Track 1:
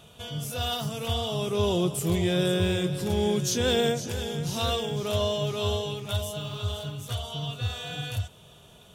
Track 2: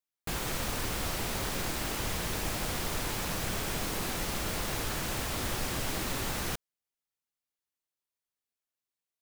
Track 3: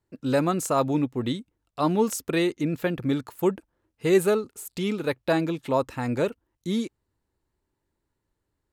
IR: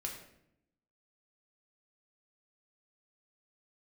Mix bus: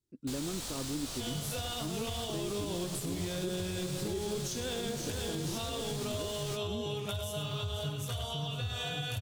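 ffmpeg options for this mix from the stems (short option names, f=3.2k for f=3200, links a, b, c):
-filter_complex "[0:a]acompressor=threshold=-30dB:ratio=6,adelay=1000,volume=2.5dB,asplit=2[a][b];[b]volume=-9.5dB[c];[1:a]equalizer=f=2k:t=o:w=1:g=-4,equalizer=f=4k:t=o:w=1:g=8,equalizer=f=8k:t=o:w=1:g=9,flanger=delay=17.5:depth=5.1:speed=0.61,volume=-5dB[d];[2:a]lowshelf=f=480:t=q:w=1.5:g=9.5,volume=-19.5dB[e];[c]aecho=0:1:99:1[f];[a][d][e][f]amix=inputs=4:normalize=0,alimiter=level_in=2.5dB:limit=-24dB:level=0:latency=1:release=241,volume=-2.5dB"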